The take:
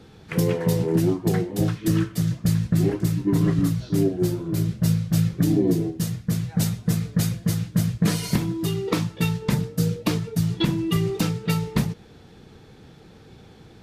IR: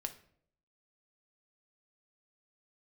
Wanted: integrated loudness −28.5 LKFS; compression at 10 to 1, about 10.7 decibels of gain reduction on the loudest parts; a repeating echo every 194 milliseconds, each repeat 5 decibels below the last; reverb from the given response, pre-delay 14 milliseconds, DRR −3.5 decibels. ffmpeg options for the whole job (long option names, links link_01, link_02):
-filter_complex "[0:a]acompressor=threshold=-27dB:ratio=10,aecho=1:1:194|388|582|776|970|1164|1358:0.562|0.315|0.176|0.0988|0.0553|0.031|0.0173,asplit=2[link_01][link_02];[1:a]atrim=start_sample=2205,adelay=14[link_03];[link_02][link_03]afir=irnorm=-1:irlink=0,volume=5dB[link_04];[link_01][link_04]amix=inputs=2:normalize=0,volume=-2dB"